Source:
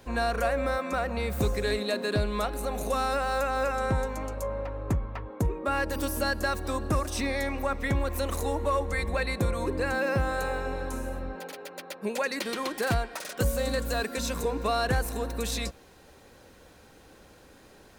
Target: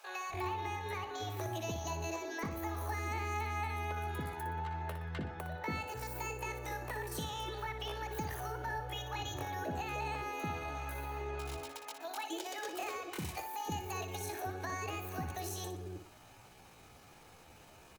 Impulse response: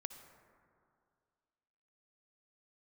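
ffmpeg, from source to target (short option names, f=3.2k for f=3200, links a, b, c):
-filter_complex "[0:a]acrossover=split=170|370[a][b][c];[a]acompressor=threshold=-40dB:ratio=4[d];[b]acompressor=threshold=-38dB:ratio=4[e];[c]acompressor=threshold=-38dB:ratio=4[f];[d][e][f]amix=inputs=3:normalize=0,acrossover=split=330[g][h];[g]adelay=290[i];[i][h]amix=inputs=2:normalize=0,asetrate=70004,aresample=44100,atempo=0.629961,asplit=2[j][k];[k]aecho=0:1:60|120|180|240:0.355|0.135|0.0512|0.0195[l];[j][l]amix=inputs=2:normalize=0,volume=-3.5dB"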